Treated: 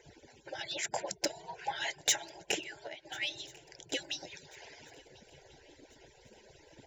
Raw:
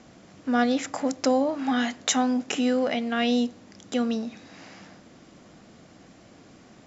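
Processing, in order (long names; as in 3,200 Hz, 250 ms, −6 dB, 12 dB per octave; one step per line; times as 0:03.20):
harmonic-percussive split with one part muted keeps percussive
0:02.60–0:03.05: downward compressor 16 to 1, threshold −41 dBFS, peak gain reduction 16.5 dB
0:03.94–0:04.46: high-shelf EQ 4,600 Hz +11 dB
soft clipping −19.5 dBFS, distortion −13 dB
Butterworth band-reject 1,200 Hz, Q 2.4
feedback echo with a long and a short gap by turns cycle 1,391 ms, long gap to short 3 to 1, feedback 41%, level −24 dB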